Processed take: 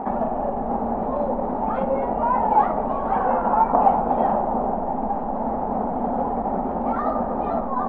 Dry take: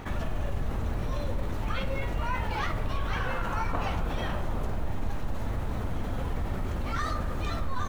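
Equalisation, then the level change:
low-pass with resonance 800 Hz, resonance Q 4.9
low shelf with overshoot 160 Hz −13.5 dB, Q 3
parametric band 310 Hz −9 dB 0.32 octaves
+7.5 dB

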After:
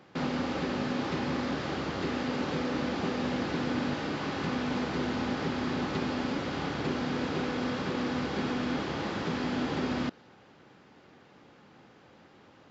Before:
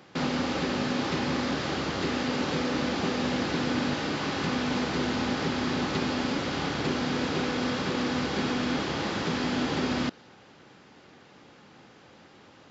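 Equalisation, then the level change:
high-shelf EQ 3,300 Hz −7.5 dB
−2.5 dB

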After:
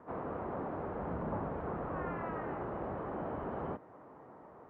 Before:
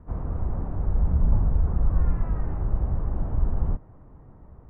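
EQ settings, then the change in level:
high-pass filter 420 Hz 12 dB per octave
dynamic equaliser 860 Hz, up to −3 dB, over −57 dBFS, Q 1.1
high-frequency loss of the air 61 metres
+6.5 dB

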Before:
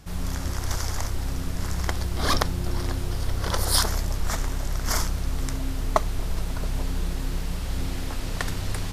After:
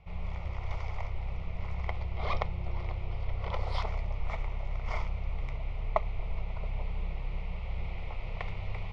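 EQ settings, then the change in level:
transistor ladder low-pass 2,400 Hz, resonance 70%
phaser with its sweep stopped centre 680 Hz, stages 4
+5.5 dB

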